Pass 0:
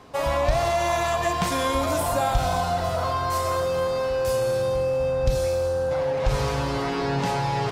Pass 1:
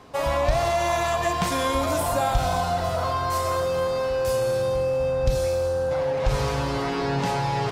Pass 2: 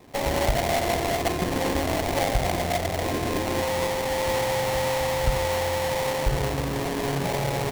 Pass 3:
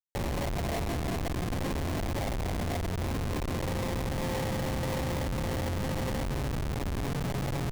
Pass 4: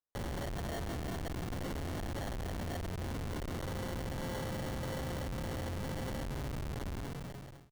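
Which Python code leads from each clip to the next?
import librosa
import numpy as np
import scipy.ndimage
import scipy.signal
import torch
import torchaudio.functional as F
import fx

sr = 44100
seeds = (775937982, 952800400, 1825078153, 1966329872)

y1 = x
y2 = fx.sample_hold(y1, sr, seeds[0], rate_hz=1400.0, jitter_pct=20)
y2 = F.gain(torch.from_numpy(y2), -1.5).numpy()
y3 = fx.schmitt(y2, sr, flips_db=-26.0)
y3 = F.gain(torch.from_numpy(y3), -5.5).numpy()
y4 = fx.fade_out_tail(y3, sr, length_s=0.83)
y4 = fx.sample_hold(y4, sr, seeds[1], rate_hz=2500.0, jitter_pct=0)
y4 = F.gain(torch.from_numpy(y4), -7.0).numpy()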